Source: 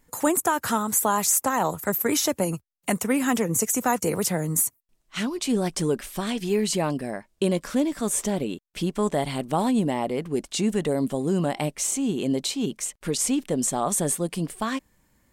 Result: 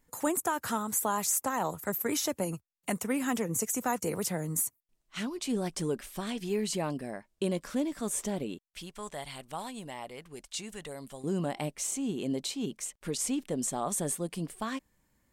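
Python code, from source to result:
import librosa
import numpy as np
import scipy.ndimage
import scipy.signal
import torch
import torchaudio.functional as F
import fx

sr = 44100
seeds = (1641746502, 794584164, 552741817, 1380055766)

y = fx.peak_eq(x, sr, hz=260.0, db=-14.5, octaves=2.7, at=(8.69, 11.24))
y = F.gain(torch.from_numpy(y), -7.5).numpy()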